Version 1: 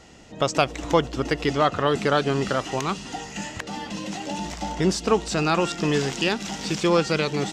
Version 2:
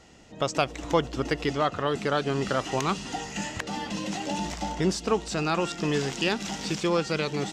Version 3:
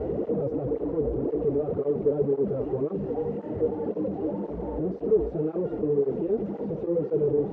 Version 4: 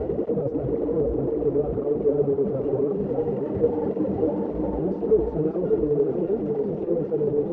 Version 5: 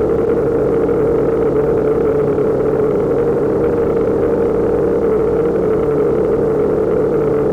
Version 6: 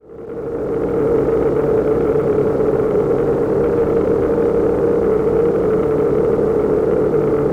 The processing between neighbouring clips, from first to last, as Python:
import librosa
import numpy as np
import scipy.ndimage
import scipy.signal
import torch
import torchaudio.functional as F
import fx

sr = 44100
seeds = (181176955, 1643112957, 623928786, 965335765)

y1 = fx.rider(x, sr, range_db=3, speed_s=0.5)
y1 = F.gain(torch.from_numpy(y1), -3.0).numpy()
y2 = np.sign(y1) * np.sqrt(np.mean(np.square(y1)))
y2 = fx.lowpass_res(y2, sr, hz=450.0, q=4.9)
y2 = fx.flanger_cancel(y2, sr, hz=1.9, depth_ms=6.3)
y3 = fx.tremolo_shape(y2, sr, shape='saw_down', hz=11.0, depth_pct=50)
y3 = fx.rider(y3, sr, range_db=10, speed_s=2.0)
y3 = y3 + 10.0 ** (-4.5 / 20.0) * np.pad(y3, (int(592 * sr / 1000.0), 0))[:len(y3)]
y3 = F.gain(torch.from_numpy(y3), 4.0).numpy()
y4 = fx.bin_compress(y3, sr, power=0.2)
y4 = fx.leveller(y4, sr, passes=2)
y4 = fx.doubler(y4, sr, ms=28.0, db=-11)
y4 = F.gain(torch.from_numpy(y4), -5.5).numpy()
y5 = fx.fade_in_head(y4, sr, length_s=1.11)
y5 = y5 + 10.0 ** (-6.5 / 20.0) * np.pad(y5, (int(148 * sr / 1000.0), 0))[:len(y5)]
y5 = F.gain(torch.from_numpy(y5), -2.0).numpy()